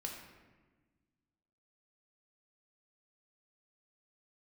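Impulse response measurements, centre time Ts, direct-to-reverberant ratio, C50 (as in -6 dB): 47 ms, 0.0 dB, 3.5 dB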